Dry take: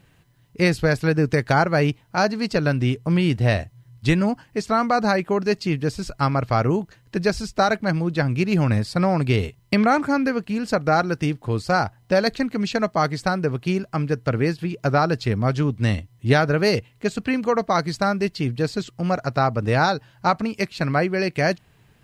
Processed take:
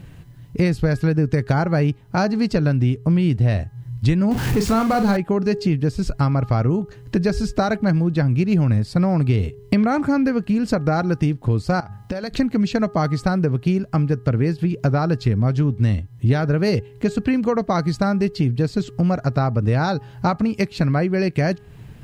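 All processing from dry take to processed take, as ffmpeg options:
ffmpeg -i in.wav -filter_complex "[0:a]asettb=1/sr,asplit=3[link_01][link_02][link_03];[link_01]atrim=end=4.314[link_04];[link_02]atrim=start=4.31:end=5.17,asetpts=PTS-STARTPTS,afade=type=in:duration=0.004:curve=qsin,afade=type=out:start_time=0.856:duration=0.004:curve=qsin,aeval=exprs='val(0)+0.5*0.0668*sgn(val(0))':channel_layout=same,bandreject=frequency=630:width=11,asplit=2[link_05][link_06];[link_06]adelay=40,volume=-7.5dB[link_07];[link_05][link_07]amix=inputs=2:normalize=0,atrim=end_sample=37926[link_08];[link_03]atrim=start=5.166[link_09];[link_04][link_08]acrossfade=duration=0.004:curve1=hsin:curve2=qsin[link_10];[link_10][link_09]acrossfade=duration=0.004:curve1=qsin:curve2=hsin,asettb=1/sr,asplit=3[link_11][link_12][link_13];[link_11]atrim=end=11.804[link_14];[link_12]atrim=start=11.8:end=12.34,asetpts=PTS-STARTPTS,afade=type=in:duration=0.004:curve=qsin,afade=type=out:start_time=0.536:duration=0.004:curve=qsin,lowshelf=frequency=500:gain=-5,bandreject=frequency=50:width_type=h:width=6,bandreject=frequency=100:width_type=h:width=6,bandreject=frequency=150:width_type=h:width=6,bandreject=frequency=200:width_type=h:width=6,acompressor=threshold=-33dB:ratio=16:attack=3.2:release=140:knee=1:detection=peak[link_15];[link_13]atrim=start=12.336[link_16];[link_14][link_15]acrossfade=duration=0.004:curve1=hsin:curve2=qsin[link_17];[link_17][link_16]acrossfade=duration=0.004:curve1=qsin:curve2=hsin,lowshelf=frequency=340:gain=12,bandreject=frequency=412.1:width_type=h:width=4,bandreject=frequency=824.2:width_type=h:width=4,bandreject=frequency=1236.3:width_type=h:width=4,bandreject=frequency=1648.4:width_type=h:width=4,acompressor=threshold=-26dB:ratio=3,volume=6.5dB" out.wav

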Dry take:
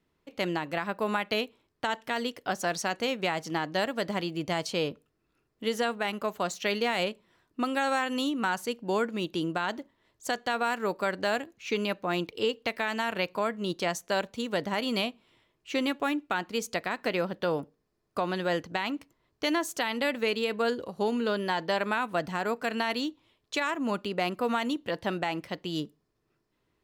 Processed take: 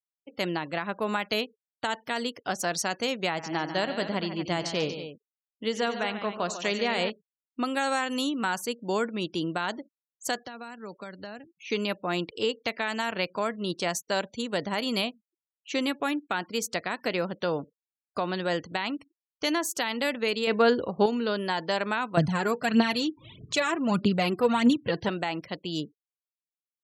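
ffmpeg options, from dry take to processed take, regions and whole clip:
ffmpeg -i in.wav -filter_complex "[0:a]asettb=1/sr,asplit=3[link_01][link_02][link_03];[link_01]atrim=end=3.294[link_04];[link_02]atrim=start=3.29:end=7.1,asetpts=PTS-STARTPTS,afade=type=in:duration=0.004:curve=qsin,afade=type=out:start_time=3.806:duration=0.004:curve=qsin,adynamicsmooth=sensitivity=1:basefreq=7700,aecho=1:1:89|143|236:0.178|0.299|0.266,atrim=end_sample=168021[link_05];[link_03]atrim=start=7.096[link_06];[link_04][link_05]acrossfade=duration=0.004:curve1=hsin:curve2=qsin[link_07];[link_07][link_06]acrossfade=duration=0.004:curve1=qsin:curve2=hsin,asettb=1/sr,asplit=3[link_08][link_09][link_10];[link_08]atrim=end=10.384[link_11];[link_09]atrim=start=10.38:end=11.7,asetpts=PTS-STARTPTS,afade=type=in:duration=0.004:curve=qsin,afade=type=out:start_time=1.316:duration=0.004:curve=qsin,acrossover=split=200|3300[link_12][link_13][link_14];[link_12]acompressor=threshold=-48dB:ratio=4[link_15];[link_13]acompressor=threshold=-41dB:ratio=4[link_16];[link_14]acompressor=threshold=-56dB:ratio=4[link_17];[link_15][link_16][link_17]amix=inputs=3:normalize=0,volume=30.5dB,asoftclip=hard,volume=-30.5dB[link_18];[link_10]atrim=start=11.696[link_19];[link_11][link_18]acrossfade=duration=0.004:curve1=hsin:curve2=qsin[link_20];[link_20][link_19]acrossfade=duration=0.004:curve1=qsin:curve2=hsin,asettb=1/sr,asplit=3[link_21][link_22][link_23];[link_21]atrim=end=20.474[link_24];[link_22]atrim=start=20.47:end=21.06,asetpts=PTS-STARTPTS,afade=type=in:duration=0.004:curve=qsin,afade=type=out:start_time=0.586:duration=0.004:curve=qsin,lowpass=6400,highshelf=frequency=4500:gain=-8,acontrast=77[link_25];[link_23]atrim=start=21.056[link_26];[link_24][link_25]acrossfade=duration=0.004:curve1=hsin:curve2=qsin[link_27];[link_27][link_26]acrossfade=duration=0.004:curve1=qsin:curve2=hsin,asettb=1/sr,asplit=3[link_28][link_29][link_30];[link_28]atrim=end=22.174[link_31];[link_29]atrim=start=22.17:end=25.09,asetpts=PTS-STARTPTS,afade=type=in:duration=0.004:curve=qsin,afade=type=out:start_time=2.916:duration=0.004:curve=qsin,aphaser=in_gain=1:out_gain=1:delay=2.9:decay=0.58:speed=1.6:type=triangular,acompressor=mode=upward:threshold=-36dB:ratio=2.5:attack=3.2:release=140:knee=2.83:detection=peak,equalizer=frequency=140:width_type=o:width=1.5:gain=12.5[link_32];[link_30]atrim=start=25.086[link_33];[link_31][link_32]acrossfade=duration=0.004:curve1=hsin:curve2=qsin[link_34];[link_34][link_33]acrossfade=duration=0.004:curve1=qsin:curve2=hsin,highpass=56,afftfilt=real='re*gte(hypot(re,im),0.00398)':imag='im*gte(hypot(re,im),0.00398)':win_size=1024:overlap=0.75,bass=frequency=250:gain=1,treble=frequency=4000:gain=6" out.wav

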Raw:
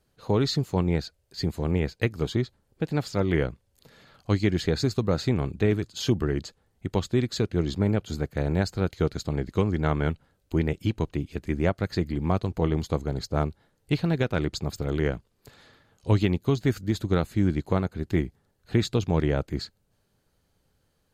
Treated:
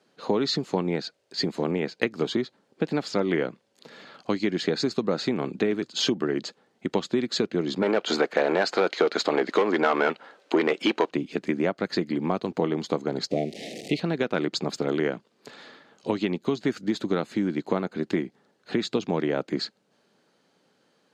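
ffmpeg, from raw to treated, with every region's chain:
ffmpeg -i in.wav -filter_complex "[0:a]asettb=1/sr,asplit=3[link_01][link_02][link_03];[link_01]atrim=end=7.824[link_04];[link_02]atrim=start=7.82:end=11.1,asetpts=PTS-STARTPTS,afade=type=in:duration=0.004:curve=qsin,afade=type=out:start_time=3.276:duration=0.004:curve=qsin,bass=frequency=250:gain=-11,treble=frequency=4000:gain=1,asplit=2[link_05][link_06];[link_06]highpass=frequency=720:poles=1,volume=21dB,asoftclip=type=tanh:threshold=-11.5dB[link_07];[link_05][link_07]amix=inputs=2:normalize=0,lowpass=frequency=2100:poles=1,volume=-6dB[link_08];[link_03]atrim=start=11.096[link_09];[link_04][link_08]acrossfade=duration=0.004:curve1=hsin:curve2=qsin[link_10];[link_10][link_09]acrossfade=duration=0.004:curve1=qsin:curve2=hsin,asettb=1/sr,asplit=3[link_11][link_12][link_13];[link_11]atrim=end=13.314[link_14];[link_12]atrim=start=13.31:end=14,asetpts=PTS-STARTPTS,afade=type=in:duration=0.004:curve=qsin,afade=type=out:start_time=0.686:duration=0.004:curve=qsin,aeval=exprs='val(0)+0.5*0.015*sgn(val(0))':channel_layout=same,asuperstop=centerf=1200:order=12:qfactor=0.99[link_15];[link_13]atrim=start=13.996[link_16];[link_14][link_15]acrossfade=duration=0.004:curve1=hsin:curve2=qsin[link_17];[link_17][link_16]acrossfade=duration=0.004:curve1=qsin:curve2=hsin,lowpass=5700,acompressor=threshold=-27dB:ratio=6,highpass=frequency=200:width=0.5412,highpass=frequency=200:width=1.3066,volume=8.5dB" out.wav

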